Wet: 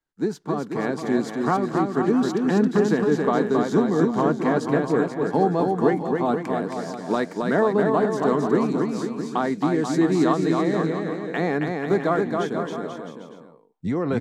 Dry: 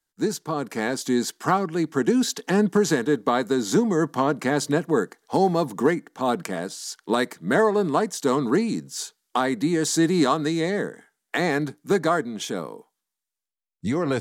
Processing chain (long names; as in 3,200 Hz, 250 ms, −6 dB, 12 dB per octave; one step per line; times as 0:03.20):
low-pass filter 1,400 Hz 6 dB per octave
on a send: bouncing-ball delay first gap 270 ms, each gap 0.8×, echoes 5